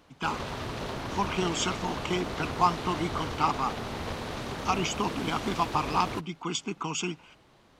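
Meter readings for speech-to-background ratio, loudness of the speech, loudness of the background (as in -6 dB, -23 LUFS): 5.0 dB, -30.5 LUFS, -35.5 LUFS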